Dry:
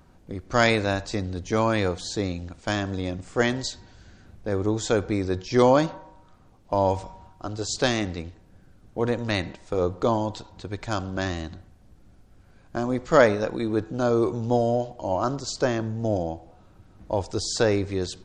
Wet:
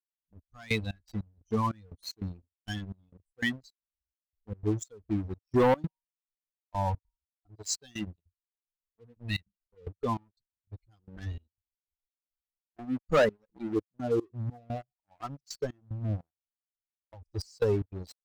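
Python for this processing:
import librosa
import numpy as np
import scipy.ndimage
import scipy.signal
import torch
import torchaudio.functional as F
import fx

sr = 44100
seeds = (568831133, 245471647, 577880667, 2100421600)

y = fx.bin_expand(x, sr, power=3.0)
y = fx.comb(y, sr, ms=2.6, depth=0.41, at=(11.17, 13.17))
y = fx.leveller(y, sr, passes=3)
y = fx.level_steps(y, sr, step_db=20, at=(16.27, 17.27))
y = fx.step_gate(y, sr, bpm=149, pattern='..xxx..xx.xx', floor_db=-24.0, edge_ms=4.5)
y = y * librosa.db_to_amplitude(-7.5)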